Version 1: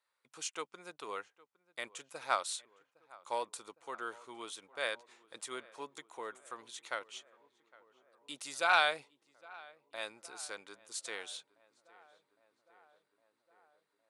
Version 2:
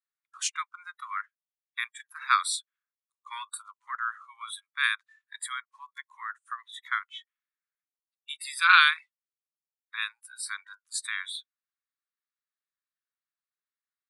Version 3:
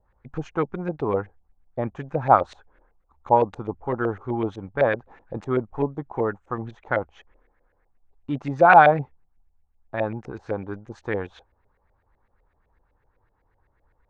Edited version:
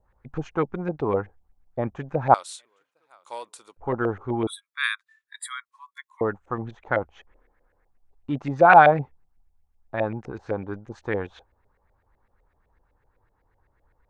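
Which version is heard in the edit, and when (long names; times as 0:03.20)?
3
0:02.34–0:03.77: punch in from 1
0:04.47–0:06.21: punch in from 2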